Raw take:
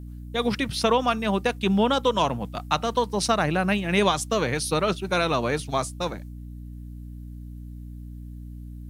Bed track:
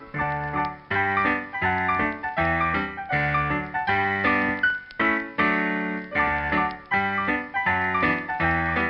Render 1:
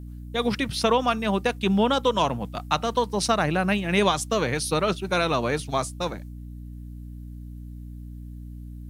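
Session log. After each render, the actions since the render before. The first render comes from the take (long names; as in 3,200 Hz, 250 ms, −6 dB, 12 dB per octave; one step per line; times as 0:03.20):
no processing that can be heard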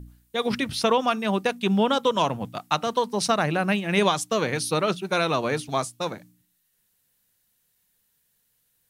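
hum removal 60 Hz, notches 5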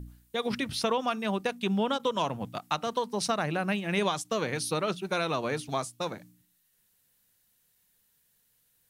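downward compressor 1.5 to 1, threshold −36 dBFS, peak gain reduction 7.5 dB
every ending faded ahead of time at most 550 dB per second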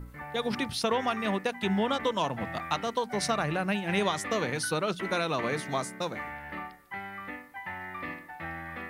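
mix in bed track −16 dB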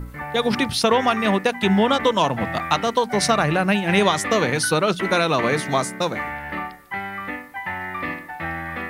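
level +10 dB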